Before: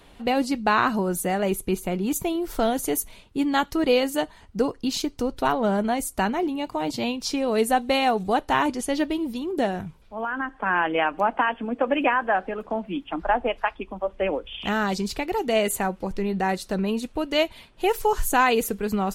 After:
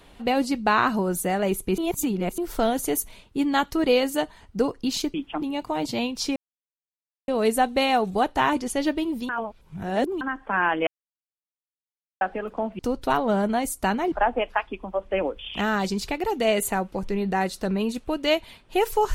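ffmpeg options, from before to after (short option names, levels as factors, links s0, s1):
-filter_complex "[0:a]asplit=12[s0][s1][s2][s3][s4][s5][s6][s7][s8][s9][s10][s11];[s0]atrim=end=1.782[s12];[s1]atrim=start=1.778:end=2.382,asetpts=PTS-STARTPTS,areverse[s13];[s2]atrim=start=2.378:end=5.142[s14];[s3]atrim=start=12.918:end=13.202[s15];[s4]atrim=start=6.468:end=7.41,asetpts=PTS-STARTPTS,afade=t=out:st=0.938:d=0.004:c=hsin,apad=pad_dur=0.92[s16];[s5]atrim=start=7.41:end=9.422,asetpts=PTS-STARTPTS,afade=t=in:d=0.004:c=hsin[s17];[s6]atrim=start=9.418:end=10.342,asetpts=PTS-STARTPTS,areverse[s18];[s7]atrim=start=10.338:end=11,asetpts=PTS-STARTPTS,afade=t=out:st=0.658:d=0.004:c=hsin[s19];[s8]atrim=start=11:end=12.34,asetpts=PTS-STARTPTS,volume=0[s20];[s9]atrim=start=12.34:end=12.922,asetpts=PTS-STARTPTS,afade=t=in:d=0.004:c=hsin[s21];[s10]atrim=start=5.138:end=6.472[s22];[s11]atrim=start=13.198[s23];[s12][s13]acrossfade=d=0.004:c1=hsin:c2=hsin[s24];[s24][s14]acrossfade=d=0.004:c1=hsin:c2=hsin[s25];[s25][s15]acrossfade=d=0.004:c1=hsin:c2=hsin[s26];[s16][s17]concat=n=2:v=0:a=1[s27];[s26][s27]acrossfade=d=0.004:c1=hsin:c2=hsin[s28];[s28][s18]acrossfade=d=0.004:c1=hsin:c2=hsin[s29];[s19][s20][s21]concat=n=3:v=0:a=1[s30];[s29][s30]acrossfade=d=0.004:c1=hsin:c2=hsin[s31];[s31][s22]acrossfade=d=0.004:c1=hsin:c2=hsin[s32];[s32][s23]acrossfade=d=0.004:c1=hsin:c2=hsin"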